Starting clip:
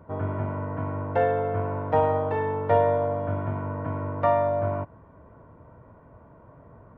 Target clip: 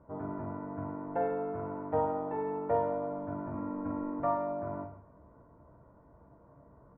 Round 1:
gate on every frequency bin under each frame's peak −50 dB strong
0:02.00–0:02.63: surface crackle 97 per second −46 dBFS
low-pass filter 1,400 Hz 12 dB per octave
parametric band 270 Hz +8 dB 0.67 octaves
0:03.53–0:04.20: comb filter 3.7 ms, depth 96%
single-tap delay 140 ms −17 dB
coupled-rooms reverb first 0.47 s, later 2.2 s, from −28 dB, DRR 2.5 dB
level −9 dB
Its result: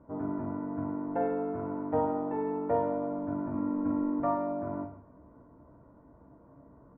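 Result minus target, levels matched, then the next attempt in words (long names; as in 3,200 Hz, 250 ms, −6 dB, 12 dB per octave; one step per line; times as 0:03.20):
250 Hz band +4.0 dB
gate on every frequency bin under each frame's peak −50 dB strong
0:02.00–0:02.63: surface crackle 97 per second −46 dBFS
low-pass filter 1,400 Hz 12 dB per octave
0:03.53–0:04.20: comb filter 3.7 ms, depth 96%
single-tap delay 140 ms −17 dB
coupled-rooms reverb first 0.47 s, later 2.2 s, from −28 dB, DRR 2.5 dB
level −9 dB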